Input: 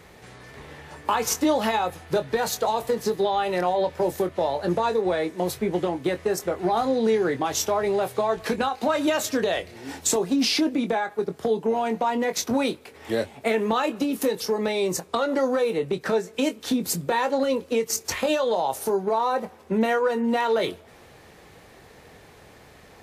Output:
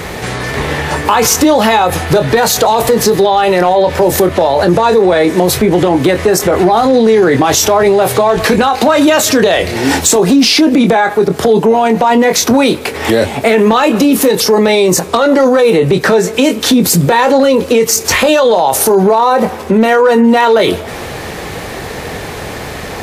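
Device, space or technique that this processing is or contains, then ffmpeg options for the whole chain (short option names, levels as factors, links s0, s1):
loud club master: -af "acompressor=threshold=0.0501:ratio=1.5,asoftclip=type=hard:threshold=0.126,alimiter=level_in=23.7:limit=0.891:release=50:level=0:latency=1,volume=0.891"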